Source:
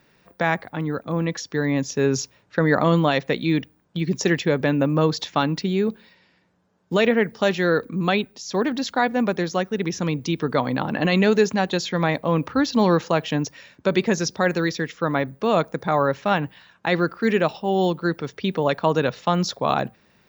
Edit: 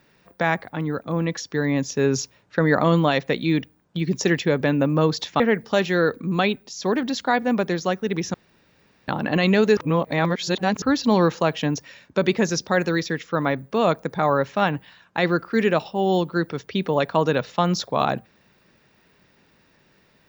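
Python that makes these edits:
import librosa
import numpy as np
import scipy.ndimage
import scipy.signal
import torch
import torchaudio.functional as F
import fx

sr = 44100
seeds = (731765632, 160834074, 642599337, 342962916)

y = fx.edit(x, sr, fx.cut(start_s=5.4, length_s=1.69),
    fx.room_tone_fill(start_s=10.03, length_s=0.74),
    fx.reverse_span(start_s=11.46, length_s=1.05), tone=tone)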